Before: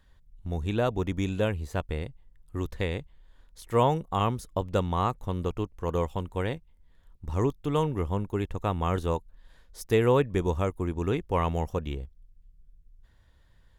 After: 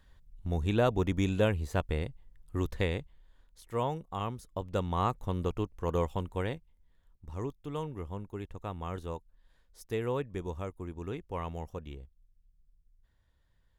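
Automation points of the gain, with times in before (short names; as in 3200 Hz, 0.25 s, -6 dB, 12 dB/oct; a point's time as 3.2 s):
2.78 s 0 dB
3.73 s -9 dB
4.42 s -9 dB
5.1 s -2 dB
6.24 s -2 dB
7.31 s -10.5 dB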